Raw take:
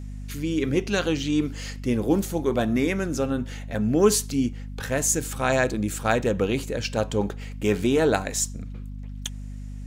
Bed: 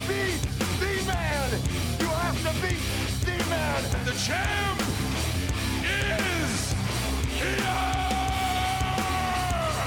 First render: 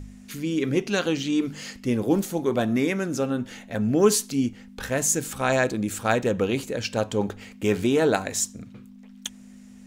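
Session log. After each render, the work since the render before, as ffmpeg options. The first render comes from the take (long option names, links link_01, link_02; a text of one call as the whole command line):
ffmpeg -i in.wav -af "bandreject=frequency=50:width_type=h:width=4,bandreject=frequency=100:width_type=h:width=4,bandreject=frequency=150:width_type=h:width=4" out.wav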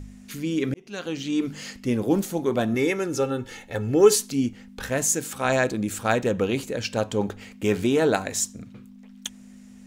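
ffmpeg -i in.wav -filter_complex "[0:a]asettb=1/sr,asplit=3[link_01][link_02][link_03];[link_01]atrim=end=2.744[link_04];[link_02]atrim=start=2.74:end=4.16,asetpts=PTS-STARTPTS,afade=type=in:duration=0.004:curve=qsin,afade=type=out:start_time=1.416:duration=0.004:curve=qsin,aecho=1:1:2.3:0.65,atrim=end_sample=62622[link_05];[link_03]atrim=start=4.156[link_06];[link_04][link_05]acrossfade=duration=0.004:curve1=hsin:curve2=qsin[link_07];[link_07][link_06]acrossfade=duration=0.004:curve1=qsin:curve2=hsin,asettb=1/sr,asplit=3[link_08][link_09][link_10];[link_08]atrim=end=5.044[link_11];[link_09]atrim=start=5.04:end=5.45,asetpts=PTS-STARTPTS,afade=type=in:duration=0.004:curve=qsin,afade=type=out:start_time=0.406:duration=0.004:curve=qsin,highpass=frequency=180:poles=1[link_12];[link_10]atrim=start=5.446[link_13];[link_11][link_12]acrossfade=duration=0.004:curve1=hsin:curve2=qsin[link_14];[link_14][link_13]acrossfade=duration=0.004:curve1=qsin:curve2=hsin,asplit=2[link_15][link_16];[link_15]atrim=end=0.74,asetpts=PTS-STARTPTS,afade=type=out:start_time=0.736:duration=0.004:curve=hsin[link_17];[link_16]atrim=start=0.74,asetpts=PTS-STARTPTS,afade=type=in:duration=0.71[link_18];[link_17][link_18]concat=n=2:v=0:a=1" out.wav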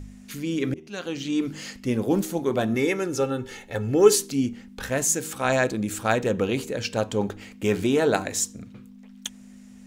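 ffmpeg -i in.wav -af "bandreject=frequency=78.86:width_type=h:width=4,bandreject=frequency=157.72:width_type=h:width=4,bandreject=frequency=236.58:width_type=h:width=4,bandreject=frequency=315.44:width_type=h:width=4,bandreject=frequency=394.3:width_type=h:width=4,bandreject=frequency=473.16:width_type=h:width=4" out.wav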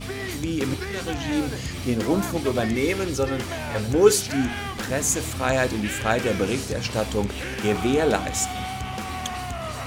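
ffmpeg -i in.wav -i bed.wav -filter_complex "[1:a]volume=-4.5dB[link_01];[0:a][link_01]amix=inputs=2:normalize=0" out.wav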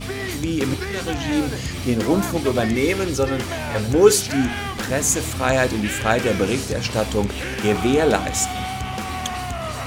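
ffmpeg -i in.wav -af "volume=3.5dB,alimiter=limit=-1dB:level=0:latency=1" out.wav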